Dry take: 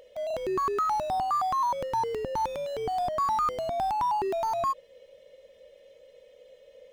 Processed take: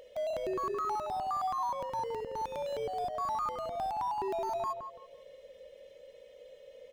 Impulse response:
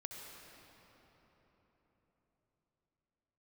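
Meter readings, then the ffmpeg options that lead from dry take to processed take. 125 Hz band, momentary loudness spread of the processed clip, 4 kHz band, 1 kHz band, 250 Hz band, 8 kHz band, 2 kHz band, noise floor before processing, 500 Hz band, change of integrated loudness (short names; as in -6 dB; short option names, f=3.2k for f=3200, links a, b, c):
-7.5 dB, 20 LU, -6.0 dB, -6.5 dB, -5.5 dB, -7.0 dB, -6.0 dB, -57 dBFS, -4.5 dB, -6.5 dB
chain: -filter_complex "[0:a]alimiter=level_in=5.5dB:limit=-24dB:level=0:latency=1:release=463,volume=-5.5dB,asplit=2[a][b];[b]adelay=168,lowpass=f=1.3k:p=1,volume=-6.5dB,asplit=2[c][d];[d]adelay=168,lowpass=f=1.3k:p=1,volume=0.3,asplit=2[e][f];[f]adelay=168,lowpass=f=1.3k:p=1,volume=0.3,asplit=2[g][h];[h]adelay=168,lowpass=f=1.3k:p=1,volume=0.3[i];[a][c][e][g][i]amix=inputs=5:normalize=0"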